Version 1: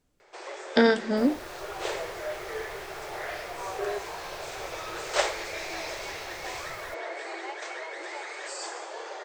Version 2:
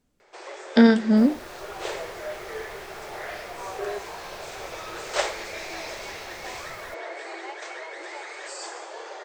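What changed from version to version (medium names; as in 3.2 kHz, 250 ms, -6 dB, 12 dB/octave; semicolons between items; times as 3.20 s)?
master: add peaking EQ 220 Hz +14 dB 0.21 oct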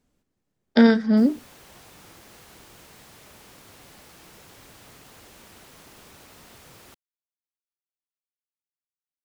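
first sound: muted; second sound: add high-pass 120 Hz 6 dB/octave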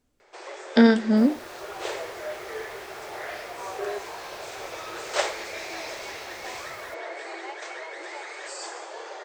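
first sound: unmuted; master: add peaking EQ 180 Hz -9.5 dB 0.26 oct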